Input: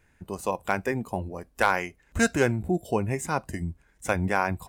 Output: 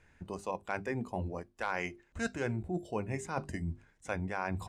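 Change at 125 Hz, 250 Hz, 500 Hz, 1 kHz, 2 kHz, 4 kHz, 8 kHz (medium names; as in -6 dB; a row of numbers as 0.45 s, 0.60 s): -7.5 dB, -9.0 dB, -10.0 dB, -10.5 dB, -10.5 dB, -11.0 dB, -13.5 dB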